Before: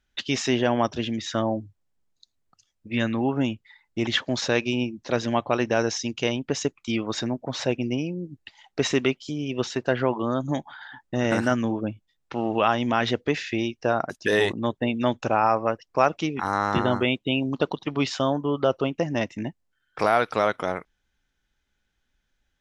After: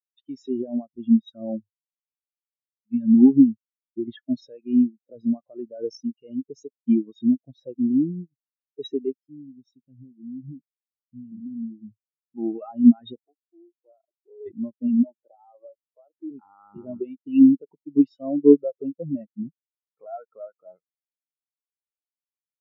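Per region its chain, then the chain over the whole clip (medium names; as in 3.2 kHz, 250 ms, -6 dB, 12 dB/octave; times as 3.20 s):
9.16–12.38 s: high-order bell 890 Hz -11.5 dB 2.7 oct + compression 4:1, threshold -29 dBFS
13.20–14.46 s: compression 4:1, threshold -30 dBFS + brick-wall FIR band-pass 250–1400 Hz + loudspeaker Doppler distortion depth 0.65 ms
15.03–16.31 s: high-pass 320 Hz + sample-rate reducer 4.1 kHz, jitter 20%
whole clip: treble shelf 6.2 kHz +10.5 dB; loudness maximiser +15.5 dB; spectral contrast expander 4:1; trim -1 dB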